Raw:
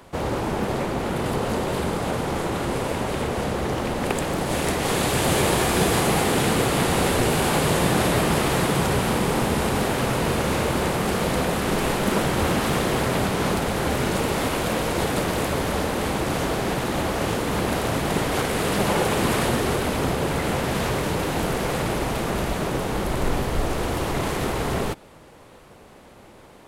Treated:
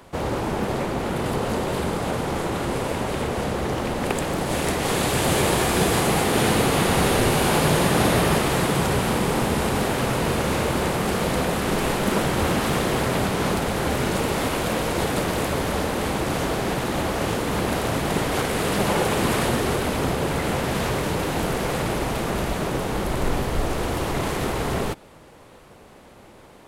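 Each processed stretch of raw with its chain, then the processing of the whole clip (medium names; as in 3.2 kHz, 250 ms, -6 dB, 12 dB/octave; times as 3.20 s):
6.25–8.38 s: band-stop 7.7 kHz, Q 16 + delay 89 ms -4.5 dB
whole clip: none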